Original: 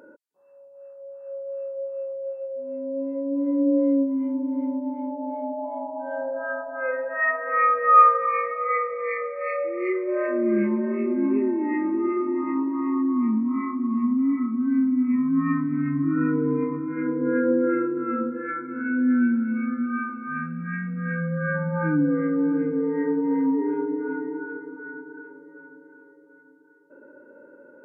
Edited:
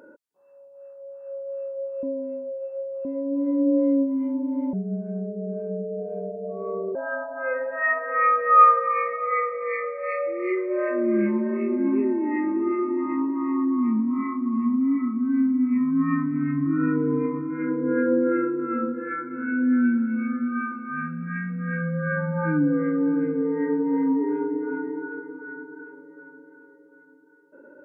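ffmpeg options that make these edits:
ffmpeg -i in.wav -filter_complex "[0:a]asplit=5[link_01][link_02][link_03][link_04][link_05];[link_01]atrim=end=2.032[link_06];[link_02]atrim=start=2.028:end=3.052,asetpts=PTS-STARTPTS,areverse[link_07];[link_03]atrim=start=3.048:end=4.734[link_08];[link_04]atrim=start=4.73:end=6.33,asetpts=PTS-STARTPTS,asetrate=31752,aresample=44100[link_09];[link_05]atrim=start=6.326[link_10];[link_06][link_07]acrossfade=duration=0.004:curve1=hsin:curve2=hsin[link_11];[link_11][link_08]acrossfade=duration=0.004:curve1=hsin:curve2=hsin[link_12];[link_12][link_09]acrossfade=duration=0.004:curve1=hsin:curve2=hsin[link_13];[link_13][link_10]acrossfade=duration=0.004:curve1=hsin:curve2=hsin" out.wav

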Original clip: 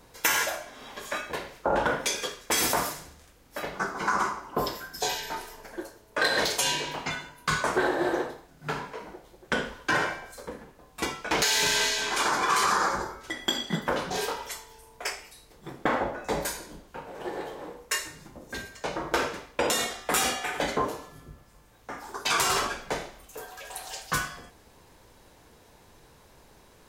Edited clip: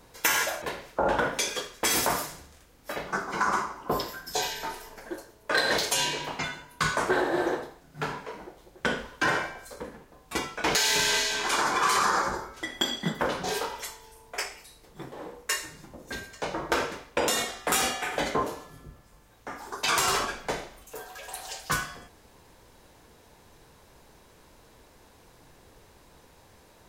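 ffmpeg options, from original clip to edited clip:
ffmpeg -i in.wav -filter_complex "[0:a]asplit=3[link_01][link_02][link_03];[link_01]atrim=end=0.622[link_04];[link_02]atrim=start=1.288:end=15.792[link_05];[link_03]atrim=start=17.538[link_06];[link_04][link_05]acrossfade=duration=0.004:curve1=hsin:curve2=hsin[link_07];[link_07][link_06]acrossfade=duration=0.004:curve1=hsin:curve2=hsin" out.wav

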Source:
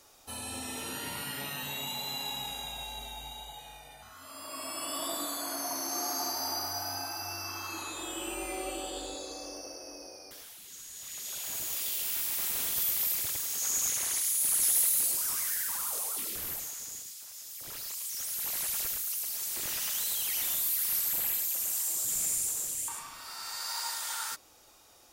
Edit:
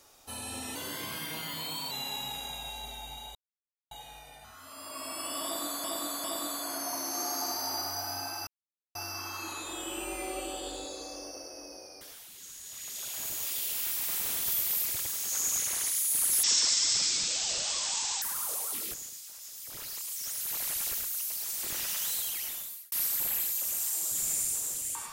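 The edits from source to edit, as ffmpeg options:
ffmpeg -i in.wav -filter_complex "[0:a]asplit=11[link_01][link_02][link_03][link_04][link_05][link_06][link_07][link_08][link_09][link_10][link_11];[link_01]atrim=end=0.754[link_12];[link_02]atrim=start=0.75:end=2.05,asetpts=PTS-STARTPTS,asetrate=49392,aresample=44100,atrim=end_sample=51187,asetpts=PTS-STARTPTS[link_13];[link_03]atrim=start=2.046:end=3.49,asetpts=PTS-STARTPTS,afade=type=out:start_time=1.44:duration=0.004:curve=hsin,apad=pad_dur=0.56[link_14];[link_04]atrim=start=3.49:end=5.422,asetpts=PTS-STARTPTS,afade=type=in:duration=0.004:curve=hsin[link_15];[link_05]atrim=start=5.018:end=5.422[link_16];[link_06]atrim=start=5.018:end=7.25,asetpts=PTS-STARTPTS,afade=type=out:start_time=2.228:duration=0.004:curve=hsin,apad=pad_dur=0.48[link_17];[link_07]atrim=start=7.25:end=14.734,asetpts=PTS-STARTPTS,afade=type=in:duration=0.004:curve=hsin[link_18];[link_08]atrim=start=14.73:end=15.66,asetpts=PTS-STARTPTS,asetrate=22932,aresample=44100,atrim=end_sample=78871,asetpts=PTS-STARTPTS[link_19];[link_09]atrim=start=15.656:end=16.382[link_20];[link_10]atrim=start=16.868:end=20.85,asetpts=PTS-STARTPTS,afade=type=out:start_time=3.202:duration=0.78[link_21];[link_11]atrim=start=20.85,asetpts=PTS-STARTPTS,afade=type=in:duration=0.004:curve=hsin[link_22];[link_12][link_13]acrossfade=duration=0.004:curve1=hsin:curve2=hsin[link_23];[link_14][link_15]concat=n=2:v=0:a=1[link_24];[link_23][link_24]acrossfade=duration=0.004:curve1=hsin:curve2=hsin[link_25];[link_25][link_16]acrossfade=duration=0.004:curve1=hsin:curve2=hsin[link_26];[link_17][link_18]concat=n=2:v=0:a=1[link_27];[link_26][link_27]acrossfade=duration=0.004:curve1=hsin:curve2=hsin[link_28];[link_28][link_19]acrossfade=duration=0.004:curve1=hsin:curve2=hsin[link_29];[link_29][link_20]acrossfade=duration=0.004:curve1=hsin:curve2=hsin[link_30];[link_21][link_22]concat=n=2:v=0:a=1[link_31];[link_30][link_31]acrossfade=duration=0.004:curve1=hsin:curve2=hsin" out.wav

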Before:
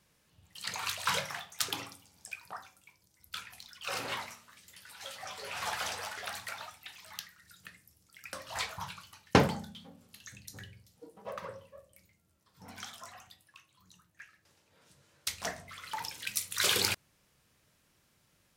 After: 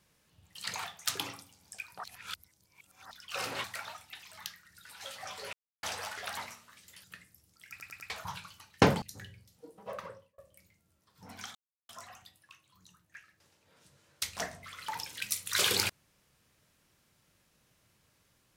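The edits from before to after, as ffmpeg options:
ffmpeg -i in.wav -filter_complex "[0:a]asplit=17[link_01][link_02][link_03][link_04][link_05][link_06][link_07][link_08][link_09][link_10][link_11][link_12][link_13][link_14][link_15][link_16][link_17];[link_01]atrim=end=0.842[link_18];[link_02]atrim=start=1.368:end=2.572[link_19];[link_03]atrim=start=2.568:end=3.642,asetpts=PTS-STARTPTS,areverse[link_20];[link_04]atrim=start=3.638:end=4.172[link_21];[link_05]atrim=start=6.368:end=7.572[link_22];[link_06]atrim=start=4.838:end=5.53,asetpts=PTS-STARTPTS,afade=type=out:start_time=0.688:duration=0.004:curve=hsin[link_23];[link_07]atrim=start=5.53:end=5.83,asetpts=PTS-STARTPTS,volume=0[link_24];[link_08]atrim=start=5.83:end=6.372,asetpts=PTS-STARTPTS,afade=type=in:duration=0.004:curve=hsin[link_25];[link_09]atrim=start=4.168:end=4.842[link_26];[link_10]atrim=start=7.568:end=8.332[link_27];[link_11]atrim=start=8.228:end=8.332[link_28];[link_12]atrim=start=8.228:end=8.332[link_29];[link_13]atrim=start=8.228:end=8.332[link_30];[link_14]atrim=start=8.628:end=9.552[link_31];[link_15]atrim=start=10.408:end=11.77,asetpts=PTS-STARTPTS,afade=type=out:start_time=0.942:duration=0.42[link_32];[link_16]atrim=start=11.77:end=12.94,asetpts=PTS-STARTPTS,afade=type=in:duration=0.004:curve=hsin,afade=type=out:start_time=1.166:duration=0.004:curve=hsin,apad=pad_dur=0.34[link_33];[link_17]atrim=start=12.94,asetpts=PTS-STARTPTS,afade=type=in:duration=0.004:curve=hsin[link_34];[link_18][link_19]acrossfade=duration=0.004:curve1=hsin:curve2=hsin[link_35];[link_35][link_20]acrossfade=duration=0.004:curve1=hsin:curve2=hsin[link_36];[link_36][link_21]acrossfade=duration=0.004:curve1=hsin:curve2=hsin[link_37];[link_37][link_22]acrossfade=duration=0.004:curve1=hsin:curve2=hsin[link_38];[link_23][link_24][link_25]concat=n=3:v=0:a=1[link_39];[link_38][link_39]acrossfade=duration=0.004:curve1=hsin:curve2=hsin[link_40];[link_40][link_26]acrossfade=duration=0.004:curve1=hsin:curve2=hsin[link_41];[link_41][link_27]acrossfade=duration=0.004:curve1=hsin:curve2=hsin[link_42];[link_42][link_28]acrossfade=duration=0.004:curve1=hsin:curve2=hsin[link_43];[link_43][link_29]acrossfade=duration=0.004:curve1=hsin:curve2=hsin[link_44];[link_44][link_30]acrossfade=duration=0.004:curve1=hsin:curve2=hsin[link_45];[link_45][link_31]acrossfade=duration=0.004:curve1=hsin:curve2=hsin[link_46];[link_32][link_33][link_34]concat=n=3:v=0:a=1[link_47];[link_46][link_47]acrossfade=duration=0.004:curve1=hsin:curve2=hsin" out.wav

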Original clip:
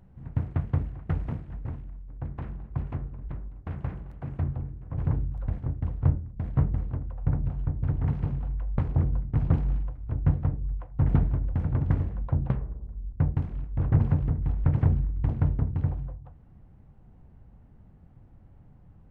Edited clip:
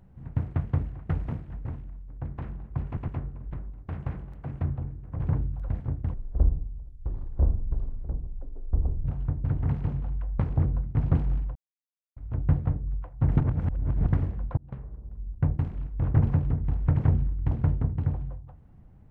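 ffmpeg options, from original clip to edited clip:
ffmpeg -i in.wav -filter_complex "[0:a]asplit=9[link_01][link_02][link_03][link_04][link_05][link_06][link_07][link_08][link_09];[link_01]atrim=end=2.972[link_10];[link_02]atrim=start=2.858:end=2.972[link_11];[link_03]atrim=start=2.858:end=5.924[link_12];[link_04]atrim=start=5.92:end=7.43,asetpts=PTS-STARTPTS,asetrate=22932,aresample=44100[link_13];[link_05]atrim=start=7.426:end=9.94,asetpts=PTS-STARTPTS,afade=type=out:start_time=2.51:duration=0.004:curve=hsin,apad=pad_dur=0.61[link_14];[link_06]atrim=start=9.94:end=11.182,asetpts=PTS-STARTPTS,afade=type=in:duration=0.004:curve=hsin[link_15];[link_07]atrim=start=11.178:end=11.842,asetpts=PTS-STARTPTS,areverse[link_16];[link_08]atrim=start=11.838:end=12.35,asetpts=PTS-STARTPTS,afade=type=out:start_time=0.508:duration=0.004:curve=hsin[link_17];[link_09]atrim=start=12.35,asetpts=PTS-STARTPTS,afade=type=in:duration=0.63[link_18];[link_10][link_11]acrossfade=duration=0.004:curve1=hsin:curve2=hsin[link_19];[link_19][link_12]acrossfade=duration=0.004:curve1=hsin:curve2=hsin[link_20];[link_20][link_13]acrossfade=duration=0.004:curve1=hsin:curve2=hsin[link_21];[link_14][link_15]concat=n=2:v=0:a=1[link_22];[link_21][link_22]acrossfade=duration=0.004:curve1=hsin:curve2=hsin[link_23];[link_23][link_16]acrossfade=duration=0.004:curve1=hsin:curve2=hsin[link_24];[link_17][link_18]concat=n=2:v=0:a=1[link_25];[link_24][link_25]acrossfade=duration=0.004:curve1=hsin:curve2=hsin" out.wav

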